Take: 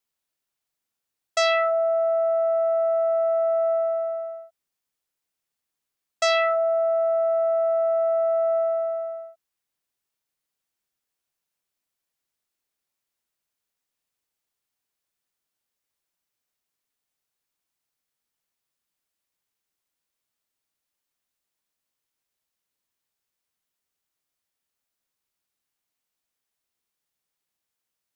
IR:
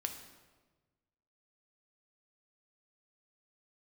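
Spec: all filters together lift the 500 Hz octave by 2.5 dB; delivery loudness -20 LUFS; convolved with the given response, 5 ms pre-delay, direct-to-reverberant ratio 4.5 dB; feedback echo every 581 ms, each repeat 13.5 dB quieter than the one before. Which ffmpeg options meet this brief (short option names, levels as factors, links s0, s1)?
-filter_complex "[0:a]equalizer=f=500:t=o:g=4,aecho=1:1:581|1162:0.211|0.0444,asplit=2[s0][s1];[1:a]atrim=start_sample=2205,adelay=5[s2];[s1][s2]afir=irnorm=-1:irlink=0,volume=0.596[s3];[s0][s3]amix=inputs=2:normalize=0,volume=0.75"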